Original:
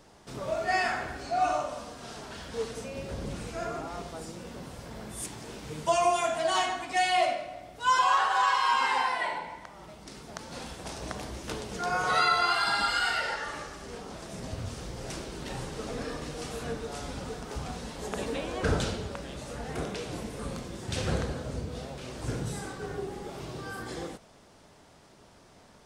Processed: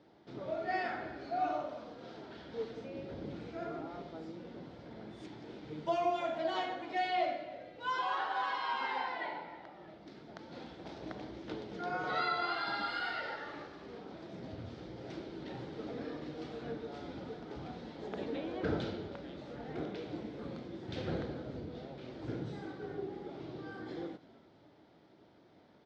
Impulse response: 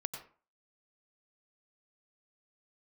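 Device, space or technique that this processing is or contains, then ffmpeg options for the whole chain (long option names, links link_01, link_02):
frequency-shifting delay pedal into a guitar cabinet: -filter_complex "[0:a]asplit=5[link_01][link_02][link_03][link_04][link_05];[link_02]adelay=320,afreqshift=-110,volume=-19dB[link_06];[link_03]adelay=640,afreqshift=-220,volume=-24.7dB[link_07];[link_04]adelay=960,afreqshift=-330,volume=-30.4dB[link_08];[link_05]adelay=1280,afreqshift=-440,volume=-36dB[link_09];[link_01][link_06][link_07][link_08][link_09]amix=inputs=5:normalize=0,highpass=110,equalizer=frequency=320:width_type=q:width=4:gain=8,equalizer=frequency=1100:width_type=q:width=4:gain=-7,equalizer=frequency=1700:width_type=q:width=4:gain=-3,equalizer=frequency=2700:width_type=q:width=4:gain=-7,lowpass=frequency=3900:width=0.5412,lowpass=frequency=3900:width=1.3066,volume=-6.5dB"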